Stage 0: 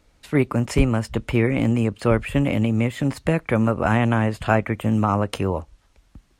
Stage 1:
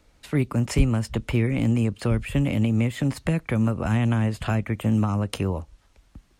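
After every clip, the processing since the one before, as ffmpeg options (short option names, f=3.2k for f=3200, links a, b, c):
-filter_complex "[0:a]acrossover=split=250|3000[a][b][c];[b]acompressor=threshold=-29dB:ratio=6[d];[a][d][c]amix=inputs=3:normalize=0"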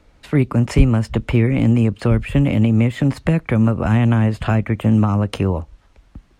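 -af "highshelf=f=4.5k:g=-11,volume=7dB"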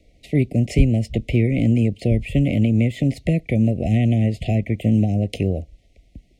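-af "asuperstop=centerf=1200:order=20:qfactor=1,volume=-2.5dB"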